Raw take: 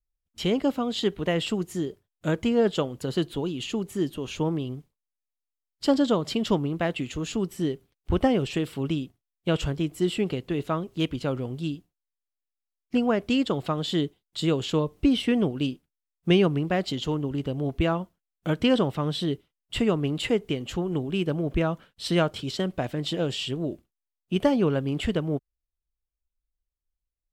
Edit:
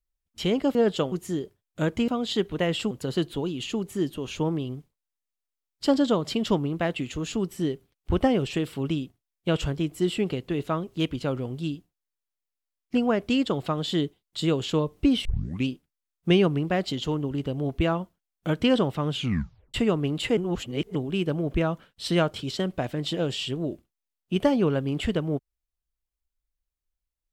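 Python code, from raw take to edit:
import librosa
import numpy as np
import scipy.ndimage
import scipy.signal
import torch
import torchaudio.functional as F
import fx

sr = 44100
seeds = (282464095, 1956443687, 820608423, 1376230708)

y = fx.edit(x, sr, fx.swap(start_s=0.75, length_s=0.83, other_s=2.54, other_length_s=0.37),
    fx.tape_start(start_s=15.25, length_s=0.42),
    fx.tape_stop(start_s=19.09, length_s=0.65),
    fx.reverse_span(start_s=20.37, length_s=0.58), tone=tone)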